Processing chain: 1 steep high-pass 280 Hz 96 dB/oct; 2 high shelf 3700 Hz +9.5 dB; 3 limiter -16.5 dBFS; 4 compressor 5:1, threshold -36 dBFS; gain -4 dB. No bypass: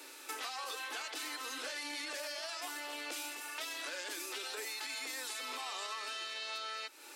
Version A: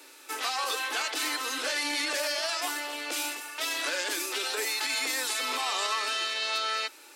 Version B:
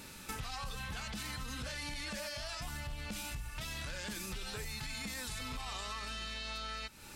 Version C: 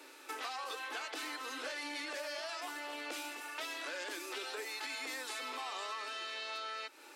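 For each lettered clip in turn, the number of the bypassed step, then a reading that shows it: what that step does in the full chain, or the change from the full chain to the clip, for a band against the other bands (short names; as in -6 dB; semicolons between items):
4, mean gain reduction 9.5 dB; 1, 250 Hz band +8.5 dB; 2, 8 kHz band -6.5 dB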